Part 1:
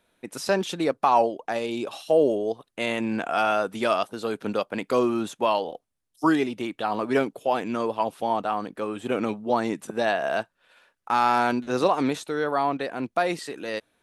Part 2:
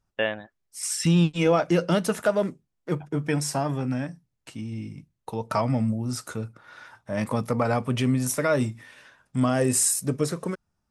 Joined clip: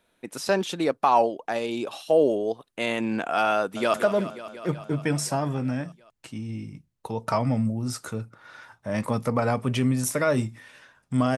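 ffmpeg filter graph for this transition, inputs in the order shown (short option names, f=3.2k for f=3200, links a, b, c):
-filter_complex "[0:a]apad=whole_dur=11.37,atrim=end=11.37,atrim=end=3.942[a];[1:a]atrim=start=2.168:end=9.6[b];[a][b]acrossfade=d=0.004:c1=hsin:c2=hsin,asplit=2[c][d];[d]afade=t=in:st=3.58:d=0.01,afade=t=out:st=3.94:d=0.01,aecho=0:1:180|360|540|720|900|1080|1260|1440|1620|1800|1980|2160:0.251189|0.200951|0.160761|0.128609|0.102887|0.0823095|0.0658476|0.0526781|0.0421425|0.033714|0.0269712|0.0215769[e];[c][e]amix=inputs=2:normalize=0"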